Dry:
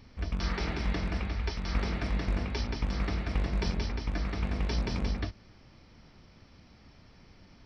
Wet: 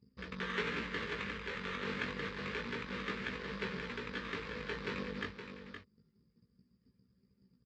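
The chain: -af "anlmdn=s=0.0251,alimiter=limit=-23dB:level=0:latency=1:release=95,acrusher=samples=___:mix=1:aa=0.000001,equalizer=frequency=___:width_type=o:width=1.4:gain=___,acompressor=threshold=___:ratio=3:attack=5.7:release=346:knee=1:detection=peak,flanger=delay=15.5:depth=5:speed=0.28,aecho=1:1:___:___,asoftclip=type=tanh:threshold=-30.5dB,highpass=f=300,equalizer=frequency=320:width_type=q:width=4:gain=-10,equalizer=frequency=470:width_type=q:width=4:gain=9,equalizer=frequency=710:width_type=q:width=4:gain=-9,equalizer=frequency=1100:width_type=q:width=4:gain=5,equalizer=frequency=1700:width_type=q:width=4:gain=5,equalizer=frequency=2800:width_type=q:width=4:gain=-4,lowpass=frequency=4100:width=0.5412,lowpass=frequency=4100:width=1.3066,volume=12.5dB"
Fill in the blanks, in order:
9, 720, -14, -34dB, 517, 0.335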